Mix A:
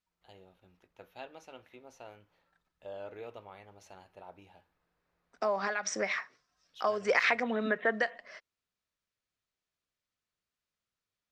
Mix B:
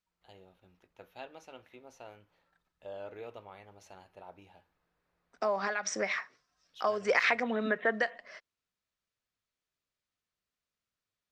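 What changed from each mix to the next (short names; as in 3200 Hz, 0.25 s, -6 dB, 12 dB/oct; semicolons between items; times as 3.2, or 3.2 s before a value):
none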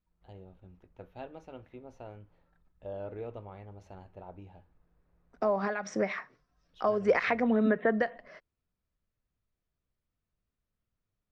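master: add tilt -4 dB/oct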